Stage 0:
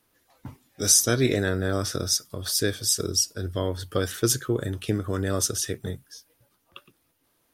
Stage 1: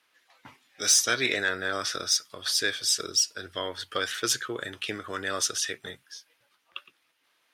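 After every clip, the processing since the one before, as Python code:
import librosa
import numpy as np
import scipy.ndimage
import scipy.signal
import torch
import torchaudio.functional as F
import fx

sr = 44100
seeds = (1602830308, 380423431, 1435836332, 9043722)

y = fx.bandpass_q(x, sr, hz=2400.0, q=0.98)
y = 10.0 ** (-18.5 / 20.0) * np.tanh(y / 10.0 ** (-18.5 / 20.0))
y = y * librosa.db_to_amplitude(7.5)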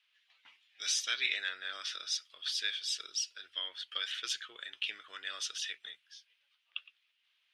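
y = fx.bandpass_q(x, sr, hz=3000.0, q=2.6)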